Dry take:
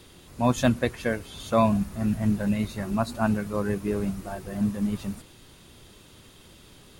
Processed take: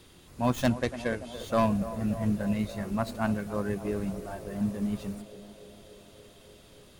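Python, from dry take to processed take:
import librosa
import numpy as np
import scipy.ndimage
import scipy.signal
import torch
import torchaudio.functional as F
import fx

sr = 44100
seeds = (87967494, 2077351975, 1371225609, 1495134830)

p1 = fx.tracing_dist(x, sr, depth_ms=0.12)
p2 = fx.lowpass(p1, sr, hz=11000.0, slope=24, at=(0.68, 1.32))
p3 = p2 + fx.echo_banded(p2, sr, ms=288, feedback_pct=82, hz=500.0, wet_db=-12, dry=0)
y = p3 * 10.0 ** (-4.0 / 20.0)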